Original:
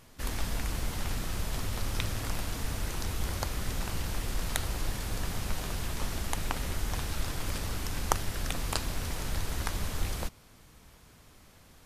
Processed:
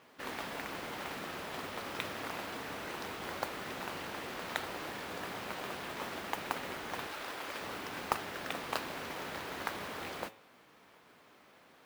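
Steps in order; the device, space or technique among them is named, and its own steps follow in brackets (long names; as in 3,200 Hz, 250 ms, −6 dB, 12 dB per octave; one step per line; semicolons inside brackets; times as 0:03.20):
carbon microphone (band-pass filter 320–2,900 Hz; soft clipping −15 dBFS, distortion −15 dB; noise that follows the level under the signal 14 dB)
hum removal 109.1 Hz, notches 34
0:07.07–0:07.61: parametric band 120 Hz −10 dB 2.3 octaves
level +1.5 dB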